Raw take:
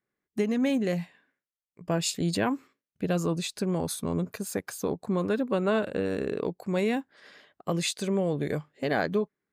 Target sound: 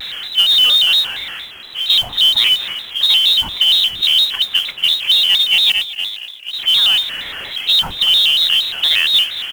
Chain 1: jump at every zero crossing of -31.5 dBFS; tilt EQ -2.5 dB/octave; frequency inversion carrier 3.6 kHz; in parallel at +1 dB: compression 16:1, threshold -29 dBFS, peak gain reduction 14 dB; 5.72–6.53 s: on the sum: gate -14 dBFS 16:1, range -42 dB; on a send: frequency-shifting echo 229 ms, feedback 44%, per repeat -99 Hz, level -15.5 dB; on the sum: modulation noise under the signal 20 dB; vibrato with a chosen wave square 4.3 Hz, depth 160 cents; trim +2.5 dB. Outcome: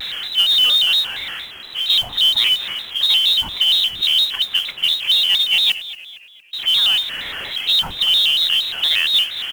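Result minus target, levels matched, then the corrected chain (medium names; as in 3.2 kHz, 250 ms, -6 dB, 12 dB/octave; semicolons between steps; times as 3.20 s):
compression: peak gain reduction +9.5 dB
jump at every zero crossing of -31.5 dBFS; tilt EQ -2.5 dB/octave; frequency inversion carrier 3.6 kHz; in parallel at +1 dB: compression 16:1, threshold -19 dBFS, peak gain reduction 4.5 dB; 5.72–6.53 s: on the sum: gate -14 dBFS 16:1, range -42 dB; on a send: frequency-shifting echo 229 ms, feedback 44%, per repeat -99 Hz, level -15.5 dB; on the sum: modulation noise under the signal 20 dB; vibrato with a chosen wave square 4.3 Hz, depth 160 cents; trim +2.5 dB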